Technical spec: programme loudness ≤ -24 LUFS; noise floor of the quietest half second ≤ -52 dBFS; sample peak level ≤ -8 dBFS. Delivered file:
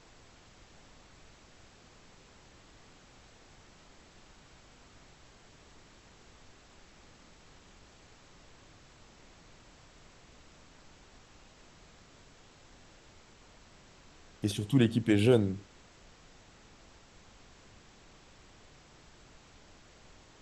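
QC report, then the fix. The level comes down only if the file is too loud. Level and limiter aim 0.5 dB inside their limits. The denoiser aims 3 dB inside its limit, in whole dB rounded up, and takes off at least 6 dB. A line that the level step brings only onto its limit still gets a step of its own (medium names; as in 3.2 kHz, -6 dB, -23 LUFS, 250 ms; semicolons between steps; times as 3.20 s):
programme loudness -28.0 LUFS: pass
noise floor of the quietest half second -57 dBFS: pass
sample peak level -11.5 dBFS: pass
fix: none needed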